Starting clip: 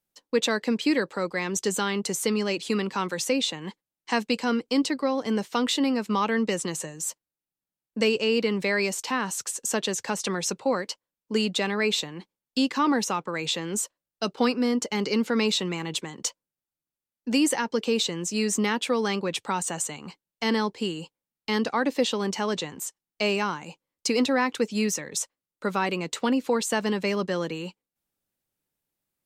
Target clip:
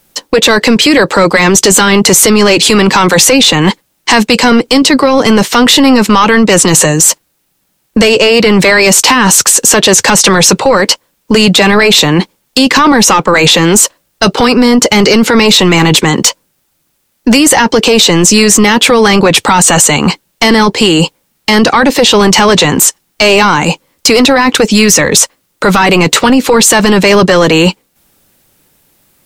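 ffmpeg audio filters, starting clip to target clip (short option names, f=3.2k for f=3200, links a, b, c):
-af "acompressor=threshold=-27dB:ratio=6,apsyclip=34dB,volume=-1.5dB"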